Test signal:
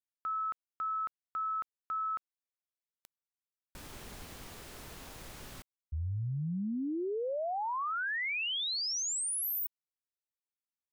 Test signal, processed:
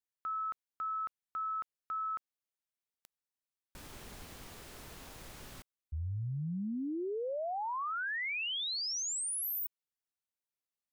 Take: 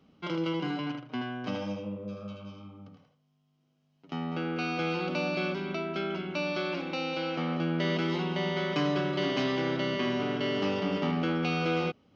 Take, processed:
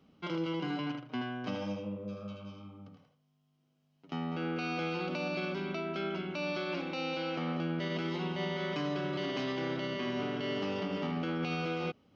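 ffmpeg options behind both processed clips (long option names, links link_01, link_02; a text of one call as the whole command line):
ffmpeg -i in.wav -af "alimiter=limit=-24dB:level=0:latency=1:release=75,volume=-2dB" out.wav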